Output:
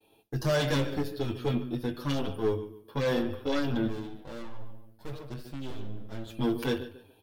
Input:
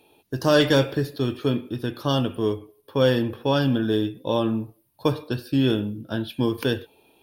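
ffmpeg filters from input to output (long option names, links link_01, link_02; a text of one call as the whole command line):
ffmpeg -i in.wav -filter_complex "[0:a]asplit=2[link_01][link_02];[link_02]adelay=21,volume=-13dB[link_03];[link_01][link_03]amix=inputs=2:normalize=0,asettb=1/sr,asplit=3[link_04][link_05][link_06];[link_04]atrim=end=3.874[link_07];[link_05]atrim=start=3.87:end=6.35,asetpts=PTS-STARTPTS,afade=type=in:duration=0.004:curve=qsin,afade=type=out:start_time=2.476:duration=0.004:curve=qsin,aeval=exprs='max(val(0),0)':channel_layout=same[link_08];[link_06]atrim=start=6.346[link_09];[link_07][link_08]acrossfade=duration=0.004:curve1=hsin:curve2=qsin[link_10];[link_10][link_09]acrossfade=duration=0.004:curve1=qsin:curve2=hsin,lowshelf=frequency=130:gain=4,asplit=2[link_11][link_12];[link_12]adelay=144,lowpass=frequency=3700:poles=1,volume=-15dB,asplit=2[link_13][link_14];[link_14]adelay=144,lowpass=frequency=3700:poles=1,volume=0.33,asplit=2[link_15][link_16];[link_16]adelay=144,lowpass=frequency=3700:poles=1,volume=0.33[link_17];[link_11][link_13][link_15][link_17]amix=inputs=4:normalize=0,aeval=exprs='(tanh(10*val(0)+0.5)-tanh(0.5))/10':channel_layout=same,agate=range=-33dB:threshold=-58dB:ratio=3:detection=peak,asplit=2[link_18][link_19];[link_19]adelay=7.1,afreqshift=0.82[link_20];[link_18][link_20]amix=inputs=2:normalize=1" out.wav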